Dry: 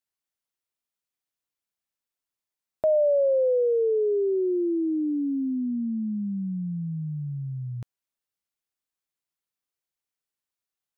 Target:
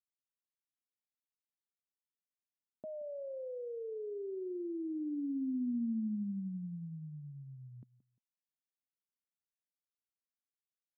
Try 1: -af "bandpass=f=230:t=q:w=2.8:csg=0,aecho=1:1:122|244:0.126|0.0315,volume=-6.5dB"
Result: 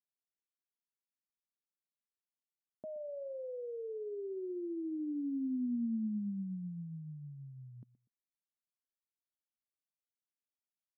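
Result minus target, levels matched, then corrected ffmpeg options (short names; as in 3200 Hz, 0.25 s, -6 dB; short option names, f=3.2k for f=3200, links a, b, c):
echo 53 ms early
-af "bandpass=f=230:t=q:w=2.8:csg=0,aecho=1:1:175|350:0.126|0.0315,volume=-6.5dB"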